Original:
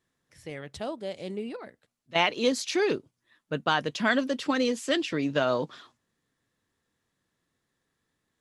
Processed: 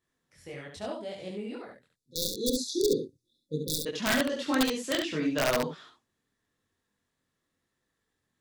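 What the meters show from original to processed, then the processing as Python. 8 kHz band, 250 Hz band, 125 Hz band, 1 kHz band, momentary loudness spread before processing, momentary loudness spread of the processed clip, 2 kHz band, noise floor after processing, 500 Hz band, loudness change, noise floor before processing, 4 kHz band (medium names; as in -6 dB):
+4.5 dB, -1.0 dB, -1.0 dB, -6.5 dB, 13 LU, 16 LU, -4.5 dB, -82 dBFS, -2.5 dB, -2.0 dB, -80 dBFS, -1.0 dB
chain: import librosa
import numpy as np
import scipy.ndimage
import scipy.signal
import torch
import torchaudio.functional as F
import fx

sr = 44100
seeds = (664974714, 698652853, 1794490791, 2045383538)

p1 = fx.chorus_voices(x, sr, voices=2, hz=0.83, base_ms=22, depth_ms=2.7, mix_pct=50)
p2 = (np.mod(10.0 ** (18.0 / 20.0) * p1 + 1.0, 2.0) - 1.0) / 10.0 ** (18.0 / 20.0)
p3 = fx.spec_erase(p2, sr, start_s=1.9, length_s=1.96, low_hz=540.0, high_hz=3400.0)
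y = p3 + fx.room_early_taps(p3, sr, ms=(45, 69), db=(-17.0, -5.0), dry=0)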